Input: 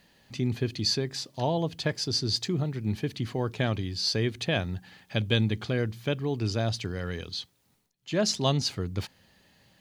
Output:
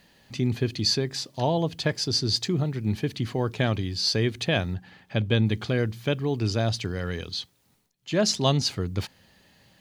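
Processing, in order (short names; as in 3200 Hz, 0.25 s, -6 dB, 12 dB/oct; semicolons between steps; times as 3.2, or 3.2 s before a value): 4.73–5.45 high shelf 4400 Hz -> 3200 Hz -11 dB; gain +3 dB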